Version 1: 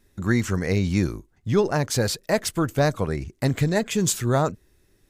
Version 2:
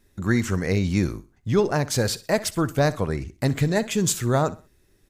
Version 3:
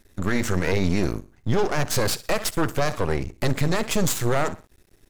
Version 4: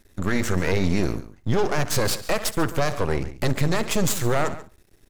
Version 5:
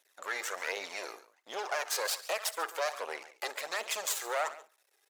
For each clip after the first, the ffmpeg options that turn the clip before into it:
ffmpeg -i in.wav -af "aecho=1:1:63|126|189:0.126|0.0403|0.0129" out.wav
ffmpeg -i in.wav -af "aeval=exprs='max(val(0),0)':channel_layout=same,alimiter=limit=-17.5dB:level=0:latency=1:release=22,volume=7dB" out.wav
ffmpeg -i in.wav -filter_complex "[0:a]asplit=2[link_01][link_02];[link_02]adelay=139.9,volume=-15dB,highshelf=frequency=4000:gain=-3.15[link_03];[link_01][link_03]amix=inputs=2:normalize=0" out.wav
ffmpeg -i in.wav -af "highpass=frequency=590:width=0.5412,highpass=frequency=590:width=1.3066,flanger=delay=0.3:depth=2.2:regen=37:speed=1.3:shape=sinusoidal,volume=-2.5dB" out.wav

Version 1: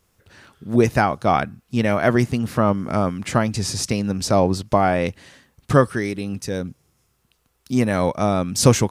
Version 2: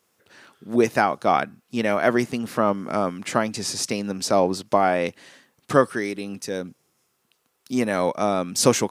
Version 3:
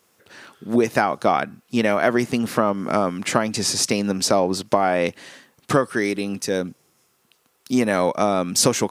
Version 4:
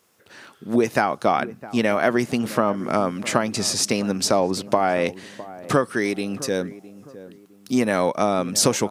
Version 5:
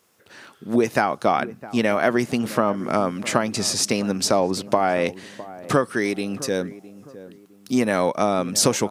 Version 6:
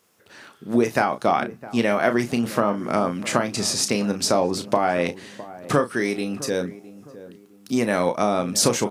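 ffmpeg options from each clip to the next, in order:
ffmpeg -i in.wav -af "highpass=240,volume=-1dB" out.wav
ffmpeg -i in.wav -af "acompressor=threshold=-20dB:ratio=5,volume=6dB" out.wav
ffmpeg -i in.wav -filter_complex "[0:a]asplit=2[link_01][link_02];[link_02]adelay=660,lowpass=frequency=910:poles=1,volume=-15.5dB,asplit=2[link_03][link_04];[link_04]adelay=660,lowpass=frequency=910:poles=1,volume=0.38,asplit=2[link_05][link_06];[link_06]adelay=660,lowpass=frequency=910:poles=1,volume=0.38[link_07];[link_01][link_03][link_05][link_07]amix=inputs=4:normalize=0,volume=-1dB" out.wav
ffmpeg -i in.wav -af anull out.wav
ffmpeg -i in.wav -filter_complex "[0:a]asplit=2[link_01][link_02];[link_02]adelay=34,volume=-9dB[link_03];[link_01][link_03]amix=inputs=2:normalize=0,volume=-1dB" out.wav

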